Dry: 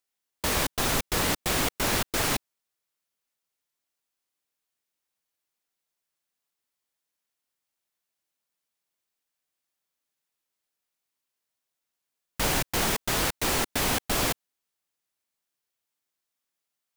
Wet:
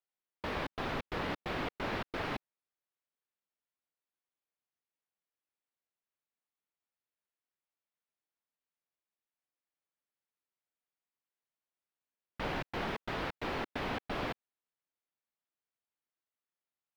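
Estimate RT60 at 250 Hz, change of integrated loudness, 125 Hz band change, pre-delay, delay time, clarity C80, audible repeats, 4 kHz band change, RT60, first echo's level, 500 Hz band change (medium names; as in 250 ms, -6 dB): no reverb, -12.0 dB, -10.0 dB, no reverb, no echo, no reverb, no echo, -15.0 dB, no reverb, no echo, -7.5 dB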